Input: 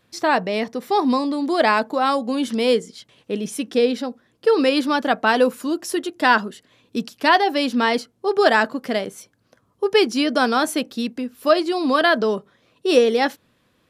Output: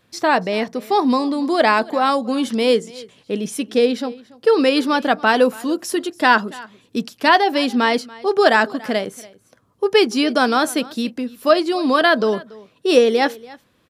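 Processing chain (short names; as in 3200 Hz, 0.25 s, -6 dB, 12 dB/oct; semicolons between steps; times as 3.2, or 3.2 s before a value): echo 0.285 s -21.5 dB; gain +2 dB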